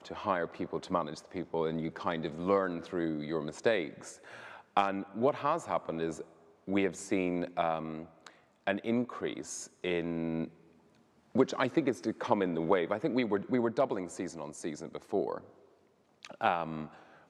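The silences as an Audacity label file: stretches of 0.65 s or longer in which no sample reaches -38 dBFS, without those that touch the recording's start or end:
10.470000	11.350000	silence
15.380000	16.250000	silence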